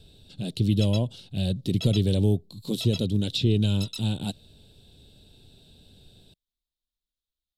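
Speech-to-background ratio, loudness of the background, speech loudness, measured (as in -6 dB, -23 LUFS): 12.5 dB, -38.5 LUFS, -26.0 LUFS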